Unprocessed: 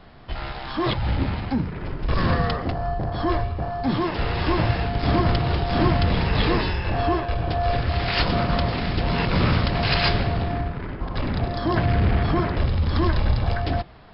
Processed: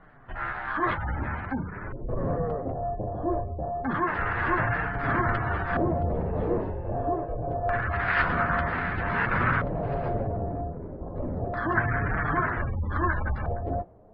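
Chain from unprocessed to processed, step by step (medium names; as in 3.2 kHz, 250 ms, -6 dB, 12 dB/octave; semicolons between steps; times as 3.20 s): flange 0.41 Hz, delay 6.2 ms, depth 7.1 ms, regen -30%; in parallel at -11 dB: hard clipper -26.5 dBFS, distortion -8 dB; on the sum: spectral gate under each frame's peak -30 dB strong; LFO low-pass square 0.26 Hz 560–1600 Hz; dynamic bell 1.6 kHz, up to +8 dB, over -41 dBFS, Q 0.82; trim -6 dB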